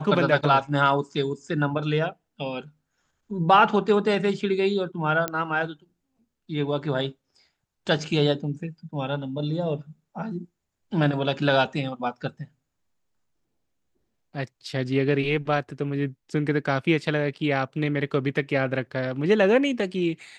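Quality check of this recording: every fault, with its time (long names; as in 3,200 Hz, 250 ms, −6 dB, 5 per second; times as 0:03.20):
0:05.28: click −10 dBFS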